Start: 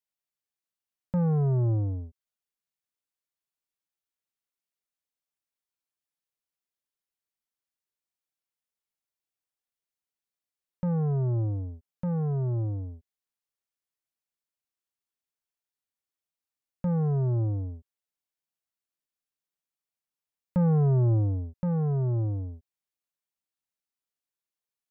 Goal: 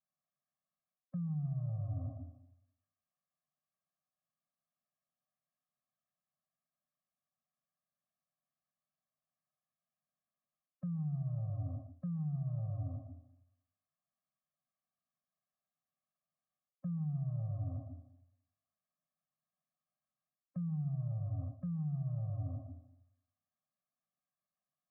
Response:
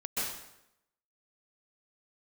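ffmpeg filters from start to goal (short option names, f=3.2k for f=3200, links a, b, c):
-filter_complex "[0:a]lowpass=f=1.3k:w=0.5412,lowpass=f=1.3k:w=1.3066,aemphasis=mode=production:type=riaa,asplit=2[a][b];[1:a]atrim=start_sample=2205[c];[b][c]afir=irnorm=-1:irlink=0,volume=-10.5dB[d];[a][d]amix=inputs=2:normalize=0,acrossover=split=170|790[e][f][g];[e]acompressor=threshold=-34dB:ratio=4[h];[f]acompressor=threshold=-45dB:ratio=4[i];[g]acompressor=threshold=-54dB:ratio=4[j];[h][i][j]amix=inputs=3:normalize=0,equalizer=f=150:t=o:w=0.71:g=14,areverse,acompressor=threshold=-40dB:ratio=16,areverse,afftfilt=real='re*eq(mod(floor(b*sr/1024/260),2),0)':imag='im*eq(mod(floor(b*sr/1024/260),2),0)':win_size=1024:overlap=0.75,volume=5.5dB"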